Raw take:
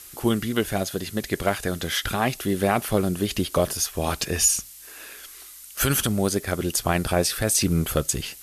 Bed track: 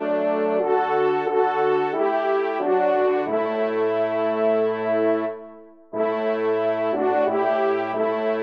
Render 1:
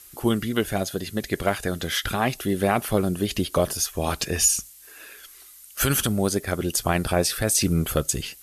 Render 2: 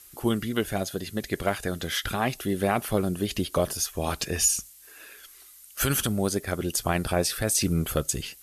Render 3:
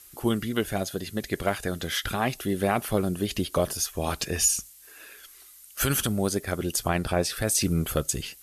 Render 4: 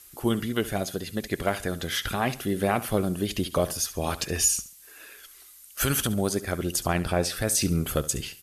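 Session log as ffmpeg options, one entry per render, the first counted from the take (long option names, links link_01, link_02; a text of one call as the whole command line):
ffmpeg -i in.wav -af "afftdn=noise_reduction=6:noise_floor=-44" out.wav
ffmpeg -i in.wav -af "volume=-3dB" out.wav
ffmpeg -i in.wav -filter_complex "[0:a]asettb=1/sr,asplit=3[link_01][link_02][link_03];[link_01]atrim=end=6.884[link_04];[link_02]atrim=start=6.88:end=7.37,asetpts=PTS-STARTPTS,afade=type=in:duration=0.004:curve=qsin,afade=type=out:start_time=0.486:duration=0.004:curve=qsin,highshelf=frequency=8400:gain=-8[link_05];[link_03]atrim=start=7.366[link_06];[link_04][link_05]acrossfade=duration=0.004:curve1=hsin:curve2=qsin[link_07];[link_07][link_06]acrossfade=duration=0.004:curve1=qsin:curve2=hsin" out.wav
ffmpeg -i in.wav -af "aecho=1:1:69|138|207:0.158|0.0507|0.0162" out.wav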